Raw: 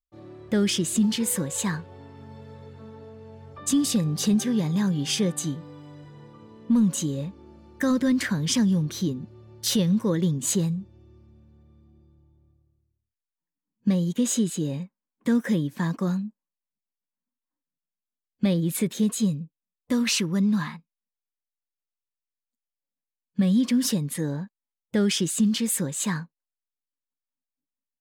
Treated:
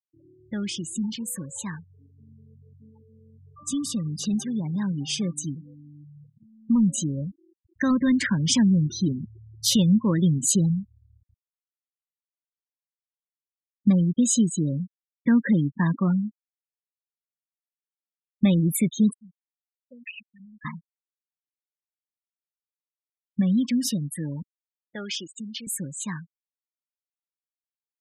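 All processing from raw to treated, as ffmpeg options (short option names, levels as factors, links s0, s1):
-filter_complex "[0:a]asettb=1/sr,asplit=3[s0][s1][s2];[s0]atrim=end=19.134[s3];[s1]atrim=start=19.13:end=20.65,asetpts=PTS-STARTPTS,afade=t=in:d=0.004:c=qsin,afade=t=out:st=1.516:d=0.004:c=qsin,asplit=3[s4][s5][s6];[s4]bandpass=f=530:t=q:w=8,volume=1[s7];[s5]bandpass=f=1840:t=q:w=8,volume=0.501[s8];[s6]bandpass=f=2480:t=q:w=8,volume=0.355[s9];[s7][s8][s9]amix=inputs=3:normalize=0,equalizer=f=470:w=0.69:g=-12[s10];[s2]atrim=start=20.646[s11];[s3][s10]acrossfade=d=0.004:c1=hsin:c2=qsin[s12];[s12][s11]acrossfade=d=0.004:c1=qsin:c2=hsin,asettb=1/sr,asplit=3[s13][s14][s15];[s13]atrim=end=24.424[s16];[s14]atrim=start=24.42:end=25.67,asetpts=PTS-STARTPTS,afade=t=in:d=0.004:c=qsin,afade=t=out:st=1.246:d=0.004:c=qsin,highpass=400,lowpass=6700,agate=range=0.316:threshold=0.0178:ratio=16:release=100:detection=peak[s17];[s15]atrim=start=25.666[s18];[s16][s17]acrossfade=d=0.004:c1=hsin:c2=qsin[s19];[s19][s18]acrossfade=d=0.004:c1=qsin:c2=hsin,afftfilt=real='re*gte(hypot(re,im),0.0316)':imag='im*gte(hypot(re,im),0.0316)':win_size=1024:overlap=0.75,equalizer=f=460:t=o:w=0.62:g=-10.5,dynaudnorm=f=990:g=13:m=3.55,volume=0.501"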